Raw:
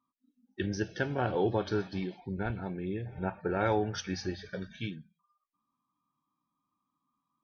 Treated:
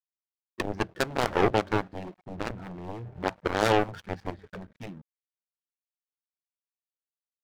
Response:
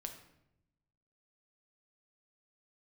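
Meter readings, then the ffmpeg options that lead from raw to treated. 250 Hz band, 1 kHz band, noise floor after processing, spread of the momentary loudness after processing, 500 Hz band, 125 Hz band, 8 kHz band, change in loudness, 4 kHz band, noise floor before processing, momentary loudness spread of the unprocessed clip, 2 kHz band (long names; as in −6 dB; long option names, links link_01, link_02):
+1.0 dB, +6.5 dB, below −85 dBFS, 19 LU, +3.5 dB, −0.5 dB, can't be measured, +4.5 dB, +6.0 dB, −85 dBFS, 11 LU, +5.5 dB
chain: -af "adynamicsmooth=sensitivity=4.5:basefreq=1000,aeval=exprs='0.15*(cos(1*acos(clip(val(0)/0.15,-1,1)))-cos(1*PI/2))+0.00531*(cos(5*acos(clip(val(0)/0.15,-1,1)))-cos(5*PI/2))+0.0422*(cos(7*acos(clip(val(0)/0.15,-1,1)))-cos(7*PI/2))':channel_layout=same,aeval=exprs='sgn(val(0))*max(abs(val(0))-0.00168,0)':channel_layout=same,volume=5.5dB"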